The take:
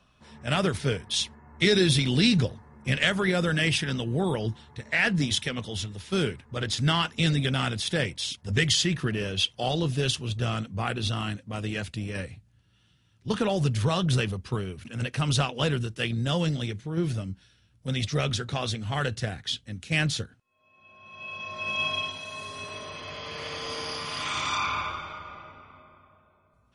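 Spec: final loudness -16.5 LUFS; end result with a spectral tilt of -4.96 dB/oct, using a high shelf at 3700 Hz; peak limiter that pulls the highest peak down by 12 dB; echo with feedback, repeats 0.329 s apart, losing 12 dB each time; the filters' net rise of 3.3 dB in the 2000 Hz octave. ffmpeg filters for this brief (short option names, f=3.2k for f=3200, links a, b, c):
-af "equalizer=f=2k:t=o:g=5.5,highshelf=f=3.7k:g=-5,alimiter=limit=-17.5dB:level=0:latency=1,aecho=1:1:329|658|987:0.251|0.0628|0.0157,volume=13dB"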